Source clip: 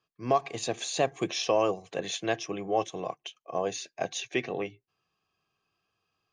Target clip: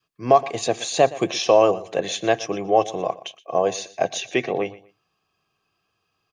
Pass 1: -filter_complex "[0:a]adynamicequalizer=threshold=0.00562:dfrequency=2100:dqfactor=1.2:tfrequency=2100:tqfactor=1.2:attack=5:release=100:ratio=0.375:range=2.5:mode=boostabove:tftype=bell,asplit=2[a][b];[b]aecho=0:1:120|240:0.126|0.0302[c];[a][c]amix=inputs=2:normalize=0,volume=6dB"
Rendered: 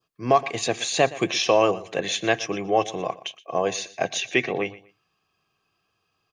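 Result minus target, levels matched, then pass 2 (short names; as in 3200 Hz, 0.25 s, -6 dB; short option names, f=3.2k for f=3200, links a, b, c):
2000 Hz band +6.0 dB
-filter_complex "[0:a]adynamicequalizer=threshold=0.00562:dfrequency=620:dqfactor=1.2:tfrequency=620:tqfactor=1.2:attack=5:release=100:ratio=0.375:range=2.5:mode=boostabove:tftype=bell,asplit=2[a][b];[b]aecho=0:1:120|240:0.126|0.0302[c];[a][c]amix=inputs=2:normalize=0,volume=6dB"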